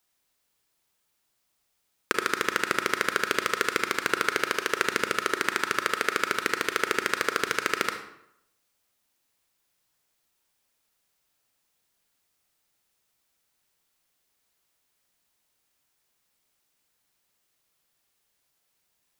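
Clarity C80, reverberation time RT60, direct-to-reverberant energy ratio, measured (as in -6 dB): 10.5 dB, 0.80 s, 6.0 dB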